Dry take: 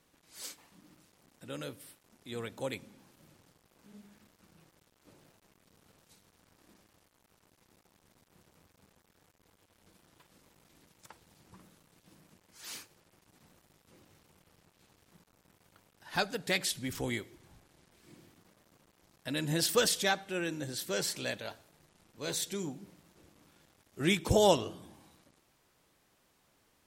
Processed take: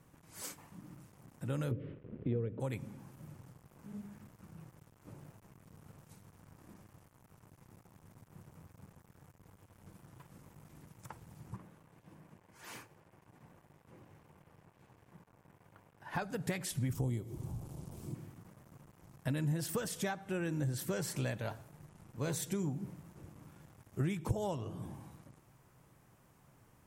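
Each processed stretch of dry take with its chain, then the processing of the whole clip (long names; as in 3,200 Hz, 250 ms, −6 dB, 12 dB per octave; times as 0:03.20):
0:01.71–0:02.60: Butterworth low-pass 3,200 Hz + low shelf with overshoot 620 Hz +9 dB, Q 3
0:11.56–0:16.22: bass and treble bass −8 dB, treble −9 dB + notch filter 1,300 Hz, Q 14
0:16.93–0:18.15: parametric band 1,800 Hz −14.5 dB 1.3 octaves + upward compression, threshold −43 dBFS
whole clip: octave-band graphic EQ 125/1,000/4,000 Hz +11/+4/−9 dB; downward compressor 12 to 1, threshold −36 dBFS; low-shelf EQ 240 Hz +5.5 dB; level +1.5 dB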